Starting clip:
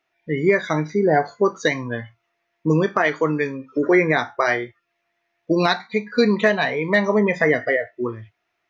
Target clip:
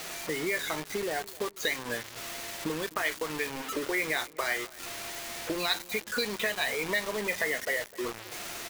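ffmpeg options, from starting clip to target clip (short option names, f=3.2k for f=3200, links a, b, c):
-filter_complex "[0:a]aeval=exprs='val(0)+0.5*0.0251*sgn(val(0))':c=same,bass=f=250:g=-13,treble=f=4k:g=-5,bandreject=f=5.6k:w=6.2,acrossover=split=2600[a][b];[a]acompressor=threshold=-31dB:ratio=10[c];[c][b]amix=inputs=2:normalize=0,acrusher=bits=5:mix=0:aa=0.000001,asplit=2[d][e];[e]adelay=257,lowpass=f=1.5k:p=1,volume=-19.5dB,asplit=2[f][g];[g]adelay=257,lowpass=f=1.5k:p=1,volume=0.52,asplit=2[h][i];[i]adelay=257,lowpass=f=1.5k:p=1,volume=0.52,asplit=2[j][k];[k]adelay=257,lowpass=f=1.5k:p=1,volume=0.52[l];[f][h][j][l]amix=inputs=4:normalize=0[m];[d][m]amix=inputs=2:normalize=0"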